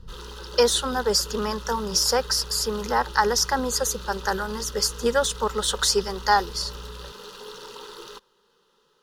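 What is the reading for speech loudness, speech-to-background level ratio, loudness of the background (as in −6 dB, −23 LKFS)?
−23.5 LKFS, 17.0 dB, −40.5 LKFS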